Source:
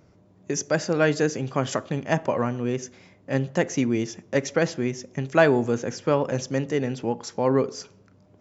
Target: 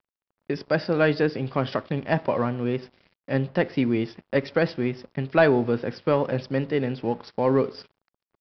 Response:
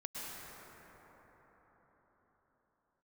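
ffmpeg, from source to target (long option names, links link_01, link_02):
-af "acontrast=52,aresample=11025,aeval=exprs='sgn(val(0))*max(abs(val(0))-0.0075,0)':channel_layout=same,aresample=44100,volume=-5dB"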